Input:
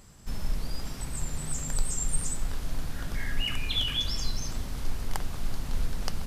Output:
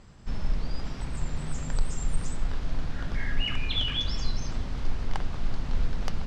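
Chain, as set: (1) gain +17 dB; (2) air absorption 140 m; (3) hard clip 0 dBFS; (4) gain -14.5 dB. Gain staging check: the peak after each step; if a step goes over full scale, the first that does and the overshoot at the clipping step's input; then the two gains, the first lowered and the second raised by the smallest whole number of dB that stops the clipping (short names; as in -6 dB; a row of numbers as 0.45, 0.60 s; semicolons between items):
+7.5, +4.0, 0.0, -14.5 dBFS; step 1, 4.0 dB; step 1 +13 dB, step 4 -10.5 dB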